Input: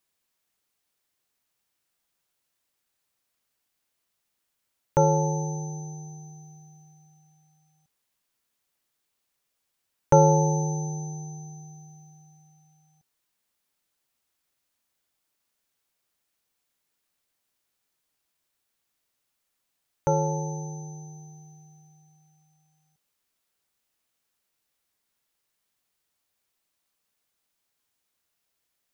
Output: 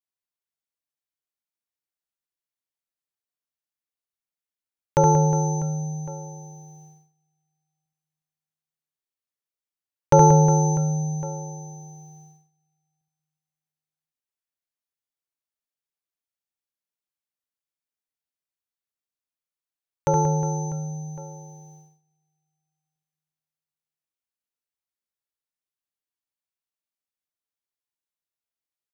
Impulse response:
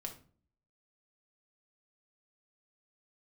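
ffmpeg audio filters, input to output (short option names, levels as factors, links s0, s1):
-af "aecho=1:1:70|182|361.2|647.9|1107:0.631|0.398|0.251|0.158|0.1,agate=range=0.0891:threshold=0.00316:ratio=16:detection=peak,volume=1.26"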